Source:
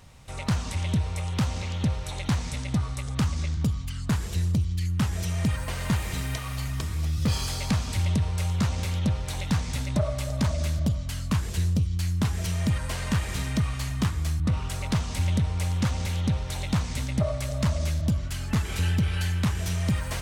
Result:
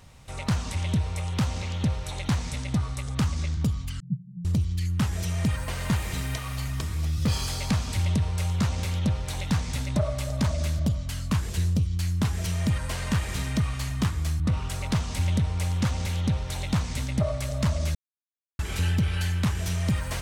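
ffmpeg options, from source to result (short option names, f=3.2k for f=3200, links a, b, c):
-filter_complex "[0:a]asettb=1/sr,asplit=3[a][b][c];[a]atrim=end=4.004[d];[b]atrim=start=4:end=4.45,asetpts=PTS-STARTPTS,afade=t=in:d=0.004:c=qsin,afade=t=out:st=0.446:d=0.004:c=qsin,asuperpass=centerf=160:order=8:qfactor=2.3[e];[c]atrim=start=4.446[f];[d][e]acrossfade=d=0.004:c1=hsin:c2=qsin[g];[g][f]acrossfade=d=0.004:c1=qsin:c2=hsin,asplit=3[h][i][j];[h]atrim=end=17.95,asetpts=PTS-STARTPTS,afade=t=out:st=17.946:d=0.004:c=hsin[k];[i]atrim=start=17.95:end=18.59,asetpts=PTS-STARTPTS,volume=0[l];[j]atrim=start=18.59,asetpts=PTS-STARTPTS,afade=t=in:d=0.004:c=hsin[m];[k][l][m]concat=n=3:v=0:a=1"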